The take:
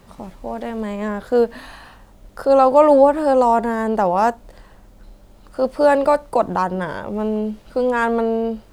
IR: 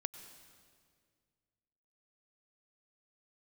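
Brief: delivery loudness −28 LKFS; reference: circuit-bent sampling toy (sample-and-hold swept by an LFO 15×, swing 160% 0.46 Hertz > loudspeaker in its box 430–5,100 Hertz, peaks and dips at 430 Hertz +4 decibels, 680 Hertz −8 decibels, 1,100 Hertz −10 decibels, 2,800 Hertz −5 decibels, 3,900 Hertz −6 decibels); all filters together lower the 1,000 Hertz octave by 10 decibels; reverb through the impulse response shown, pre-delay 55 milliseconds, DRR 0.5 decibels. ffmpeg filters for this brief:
-filter_complex "[0:a]equalizer=frequency=1000:width_type=o:gain=-6,asplit=2[link_01][link_02];[1:a]atrim=start_sample=2205,adelay=55[link_03];[link_02][link_03]afir=irnorm=-1:irlink=0,volume=1dB[link_04];[link_01][link_04]amix=inputs=2:normalize=0,acrusher=samples=15:mix=1:aa=0.000001:lfo=1:lforange=24:lforate=0.46,highpass=430,equalizer=frequency=430:width_type=q:width=4:gain=4,equalizer=frequency=680:width_type=q:width=4:gain=-8,equalizer=frequency=1100:width_type=q:width=4:gain=-10,equalizer=frequency=2800:width_type=q:width=4:gain=-5,equalizer=frequency=3900:width_type=q:width=4:gain=-6,lowpass=frequency=5100:width=0.5412,lowpass=frequency=5100:width=1.3066,volume=-7dB"

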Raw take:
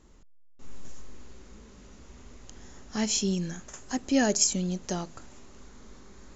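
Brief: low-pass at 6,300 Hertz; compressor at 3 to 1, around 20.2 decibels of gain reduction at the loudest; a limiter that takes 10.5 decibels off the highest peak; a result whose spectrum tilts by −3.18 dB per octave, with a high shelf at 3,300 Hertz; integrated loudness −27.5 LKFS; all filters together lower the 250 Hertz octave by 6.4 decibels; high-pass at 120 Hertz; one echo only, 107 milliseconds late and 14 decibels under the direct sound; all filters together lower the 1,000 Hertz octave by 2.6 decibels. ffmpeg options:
ffmpeg -i in.wav -af "highpass=120,lowpass=6300,equalizer=frequency=250:width_type=o:gain=-7.5,equalizer=frequency=1000:width_type=o:gain=-3.5,highshelf=frequency=3300:gain=4,acompressor=threshold=-48dB:ratio=3,alimiter=level_in=14dB:limit=-24dB:level=0:latency=1,volume=-14dB,aecho=1:1:107:0.2,volume=23dB" out.wav

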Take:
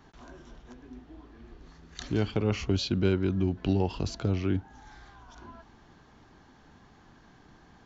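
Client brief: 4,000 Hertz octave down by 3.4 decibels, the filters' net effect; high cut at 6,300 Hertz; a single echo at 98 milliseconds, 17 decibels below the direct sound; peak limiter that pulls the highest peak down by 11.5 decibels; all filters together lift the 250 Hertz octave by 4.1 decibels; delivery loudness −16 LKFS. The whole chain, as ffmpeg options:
ffmpeg -i in.wav -af "lowpass=6300,equalizer=frequency=250:width_type=o:gain=5.5,equalizer=frequency=4000:width_type=o:gain=-3.5,alimiter=limit=-21.5dB:level=0:latency=1,aecho=1:1:98:0.141,volume=17dB" out.wav

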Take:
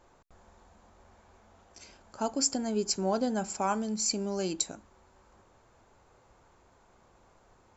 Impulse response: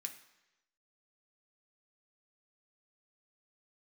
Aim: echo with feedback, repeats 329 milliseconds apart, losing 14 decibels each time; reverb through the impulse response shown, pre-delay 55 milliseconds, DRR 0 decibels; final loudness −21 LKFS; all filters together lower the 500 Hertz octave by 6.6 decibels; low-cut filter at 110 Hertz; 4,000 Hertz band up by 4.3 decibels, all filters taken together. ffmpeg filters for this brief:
-filter_complex "[0:a]highpass=110,equalizer=frequency=500:width_type=o:gain=-9,equalizer=frequency=4000:width_type=o:gain=5.5,aecho=1:1:329|658:0.2|0.0399,asplit=2[link_01][link_02];[1:a]atrim=start_sample=2205,adelay=55[link_03];[link_02][link_03]afir=irnorm=-1:irlink=0,volume=3.5dB[link_04];[link_01][link_04]amix=inputs=2:normalize=0,volume=5dB"

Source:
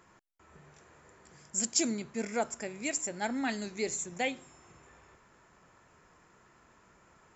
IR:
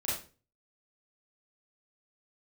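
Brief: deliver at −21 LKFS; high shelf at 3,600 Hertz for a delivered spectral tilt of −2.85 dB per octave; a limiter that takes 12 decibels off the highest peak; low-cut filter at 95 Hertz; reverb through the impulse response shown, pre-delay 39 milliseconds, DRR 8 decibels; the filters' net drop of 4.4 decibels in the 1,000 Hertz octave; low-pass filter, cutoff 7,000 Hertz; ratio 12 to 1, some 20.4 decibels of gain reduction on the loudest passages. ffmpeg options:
-filter_complex "[0:a]highpass=95,lowpass=7000,equalizer=frequency=1000:width_type=o:gain=-7.5,highshelf=frequency=3600:gain=9,acompressor=threshold=-41dB:ratio=12,alimiter=level_in=15dB:limit=-24dB:level=0:latency=1,volume=-15dB,asplit=2[link_01][link_02];[1:a]atrim=start_sample=2205,adelay=39[link_03];[link_02][link_03]afir=irnorm=-1:irlink=0,volume=-13dB[link_04];[link_01][link_04]amix=inputs=2:normalize=0,volume=28.5dB"

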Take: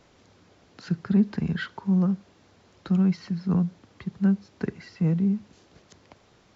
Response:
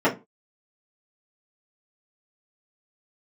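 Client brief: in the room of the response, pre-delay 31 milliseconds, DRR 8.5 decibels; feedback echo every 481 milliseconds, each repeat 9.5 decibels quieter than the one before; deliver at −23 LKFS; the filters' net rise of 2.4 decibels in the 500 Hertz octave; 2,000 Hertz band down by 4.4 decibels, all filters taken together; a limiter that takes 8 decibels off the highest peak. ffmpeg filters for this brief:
-filter_complex "[0:a]equalizer=frequency=500:width_type=o:gain=3.5,equalizer=frequency=2000:width_type=o:gain=-6.5,alimiter=limit=-18.5dB:level=0:latency=1,aecho=1:1:481|962|1443|1924:0.335|0.111|0.0365|0.012,asplit=2[link_01][link_02];[1:a]atrim=start_sample=2205,adelay=31[link_03];[link_02][link_03]afir=irnorm=-1:irlink=0,volume=-26.5dB[link_04];[link_01][link_04]amix=inputs=2:normalize=0,volume=5.5dB"

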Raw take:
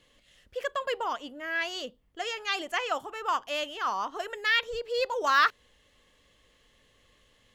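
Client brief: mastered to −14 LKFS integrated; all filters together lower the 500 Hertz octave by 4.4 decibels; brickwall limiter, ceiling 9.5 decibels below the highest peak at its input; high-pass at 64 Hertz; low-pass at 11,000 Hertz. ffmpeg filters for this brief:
ffmpeg -i in.wav -af "highpass=64,lowpass=11000,equalizer=frequency=500:width_type=o:gain=-5,volume=19dB,alimiter=limit=-1.5dB:level=0:latency=1" out.wav

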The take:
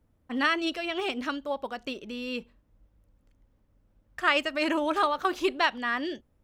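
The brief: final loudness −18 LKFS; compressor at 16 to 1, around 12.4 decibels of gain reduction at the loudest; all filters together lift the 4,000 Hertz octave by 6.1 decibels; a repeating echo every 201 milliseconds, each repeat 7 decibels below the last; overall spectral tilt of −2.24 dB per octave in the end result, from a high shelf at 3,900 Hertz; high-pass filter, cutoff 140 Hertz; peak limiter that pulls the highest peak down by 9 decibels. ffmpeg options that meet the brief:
ffmpeg -i in.wav -af "highpass=140,highshelf=frequency=3900:gain=4.5,equalizer=frequency=4000:width_type=o:gain=6,acompressor=threshold=-29dB:ratio=16,alimiter=level_in=1dB:limit=-24dB:level=0:latency=1,volume=-1dB,aecho=1:1:201|402|603|804|1005:0.447|0.201|0.0905|0.0407|0.0183,volume=17dB" out.wav

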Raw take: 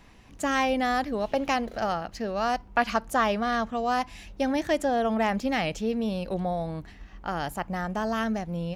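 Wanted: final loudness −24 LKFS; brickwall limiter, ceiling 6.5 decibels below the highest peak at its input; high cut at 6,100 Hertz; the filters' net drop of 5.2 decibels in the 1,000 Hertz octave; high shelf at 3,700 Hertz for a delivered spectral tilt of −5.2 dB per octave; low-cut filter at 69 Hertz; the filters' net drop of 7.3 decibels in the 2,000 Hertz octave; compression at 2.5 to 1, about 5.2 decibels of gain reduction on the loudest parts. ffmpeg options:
ffmpeg -i in.wav -af "highpass=69,lowpass=6100,equalizer=frequency=1000:width_type=o:gain=-6.5,equalizer=frequency=2000:width_type=o:gain=-8,highshelf=frequency=3700:gain=4,acompressor=threshold=-31dB:ratio=2.5,volume=11.5dB,alimiter=limit=-14.5dB:level=0:latency=1" out.wav

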